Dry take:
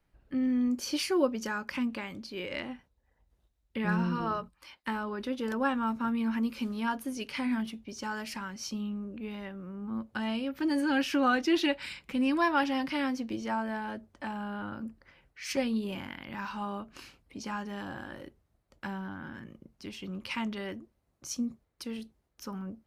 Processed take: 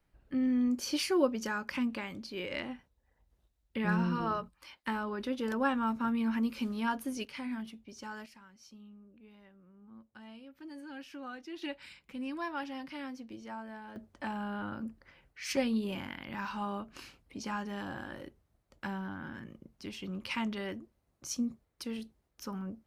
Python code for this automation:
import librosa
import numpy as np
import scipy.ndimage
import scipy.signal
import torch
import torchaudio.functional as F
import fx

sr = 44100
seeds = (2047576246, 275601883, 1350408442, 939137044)

y = fx.gain(x, sr, db=fx.steps((0.0, -1.0), (7.25, -7.5), (8.26, -18.0), (11.62, -11.0), (13.96, -0.5)))